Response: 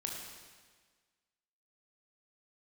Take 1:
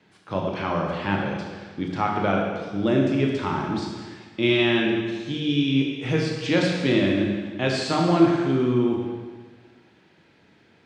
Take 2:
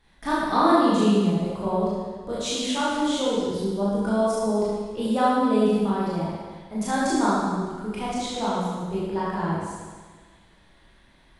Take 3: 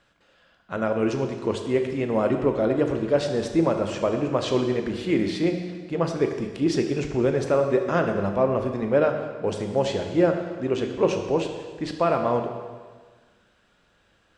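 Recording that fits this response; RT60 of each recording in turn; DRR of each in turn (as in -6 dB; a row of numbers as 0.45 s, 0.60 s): 1; 1.5 s, 1.5 s, 1.5 s; -0.5 dB, -8.5 dB, 4.5 dB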